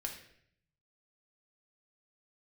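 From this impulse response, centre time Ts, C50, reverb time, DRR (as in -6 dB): 23 ms, 7.0 dB, 0.65 s, 1.0 dB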